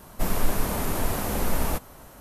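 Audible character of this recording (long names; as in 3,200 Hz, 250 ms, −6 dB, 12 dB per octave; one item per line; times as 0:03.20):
background noise floor −48 dBFS
spectral slope −4.0 dB per octave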